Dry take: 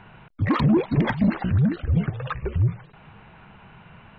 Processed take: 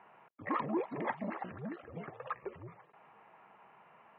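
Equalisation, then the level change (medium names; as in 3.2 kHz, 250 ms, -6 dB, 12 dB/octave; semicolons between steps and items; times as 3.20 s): band-pass 530–2000 Hz; distance through air 330 m; band-stop 1.5 kHz, Q 6.8; -4.5 dB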